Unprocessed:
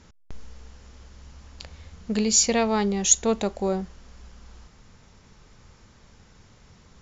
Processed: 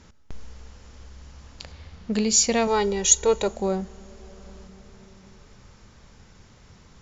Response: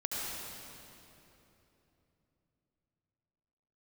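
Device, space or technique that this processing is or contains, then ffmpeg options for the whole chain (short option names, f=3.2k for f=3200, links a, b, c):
compressed reverb return: -filter_complex "[0:a]asplit=2[a][b];[1:a]atrim=start_sample=2205[c];[b][c]afir=irnorm=-1:irlink=0,acompressor=threshold=-30dB:ratio=10,volume=-14dB[d];[a][d]amix=inputs=2:normalize=0,asettb=1/sr,asplit=3[e][f][g];[e]atrim=end=1.724[h];[f]atrim=start=1.72:end=2.13,asetpts=PTS-STARTPTS,afade=t=in:d=0.004:c=qsin,afade=t=out:st=0.406:d=0.004:c=qsin,lowpass=5.3k[i];[g]atrim=start=2.126[j];[h][i]acrossfade=d=0.004:c1=hsin:c2=qsin[k];[k][j]acrossfade=d=0.004:c1=qsin:c2=hsin,asettb=1/sr,asplit=3[l][m][n];[l]atrim=end=2.674[o];[m]atrim=start=2.67:end=3.48,asetpts=PTS-STARTPTS,afade=t=in:d=0.004:c=qsin,afade=t=out:st=0.806:d=0.004:c=qsin,aecho=1:1:2.1:0.77,atrim=end_sample=35721[p];[n]atrim=start=3.476[q];[o][p]acrossfade=d=0.004:c1=hsin:c2=qsin[r];[r][q]acrossfade=d=0.004:c1=qsin:c2=hsin"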